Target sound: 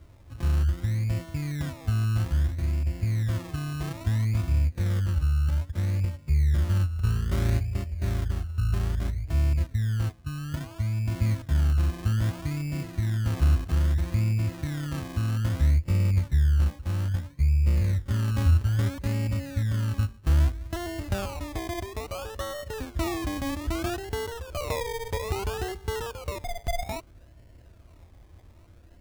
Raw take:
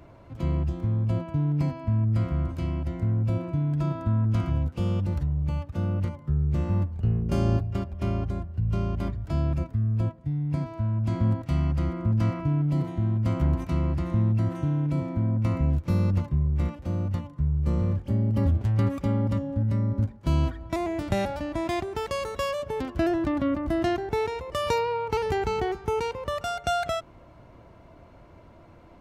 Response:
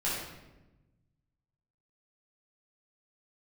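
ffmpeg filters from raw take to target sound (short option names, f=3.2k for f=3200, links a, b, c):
-af "adynamicsmooth=sensitivity=5.5:basefreq=540,acrusher=samples=25:mix=1:aa=0.000001:lfo=1:lforange=15:lforate=0.61,lowshelf=f=110:t=q:w=1.5:g=7.5,volume=-5dB"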